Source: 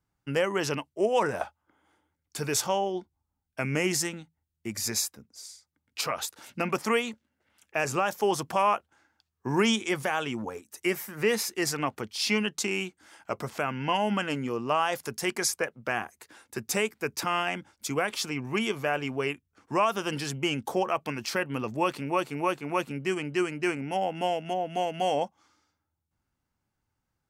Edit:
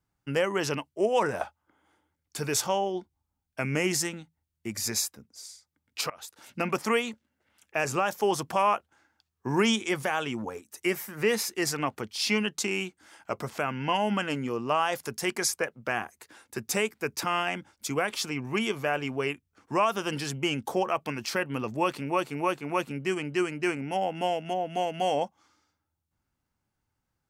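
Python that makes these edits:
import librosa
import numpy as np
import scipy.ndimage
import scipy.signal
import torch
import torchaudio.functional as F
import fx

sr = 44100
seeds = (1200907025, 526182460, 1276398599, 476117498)

y = fx.edit(x, sr, fx.fade_in_from(start_s=6.1, length_s=0.5, floor_db=-23.0), tone=tone)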